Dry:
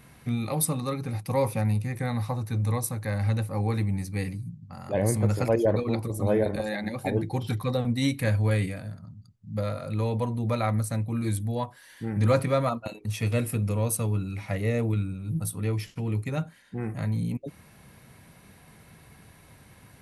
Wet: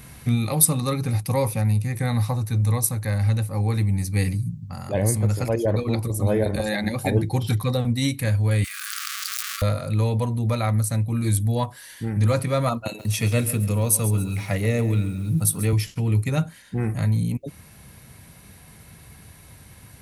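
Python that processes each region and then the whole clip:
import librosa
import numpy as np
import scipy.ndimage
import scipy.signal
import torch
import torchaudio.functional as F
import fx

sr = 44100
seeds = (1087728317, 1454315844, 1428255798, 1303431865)

y = fx.chain(x, sr, fx.zero_step(step_db=-34.5),
    fx.brickwall_highpass(low_hz=1100.0),
    fx.env_flatten(amount_pct=100), at=(8.64, 9.62))
y = fx.chain(y, sr, fx.highpass(hz=110.0, slope=12),
    fx.echo_crushed(ms=137, feedback_pct=35, bits=9, wet_db=-13.5), at=(12.85, 15.73))
y = fx.peak_eq(y, sr, hz=64.0, db=8.0, octaves=2.1)
y = fx.rider(y, sr, range_db=4, speed_s=0.5)
y = fx.high_shelf(y, sr, hz=3600.0, db=9.0)
y = y * librosa.db_to_amplitude(1.5)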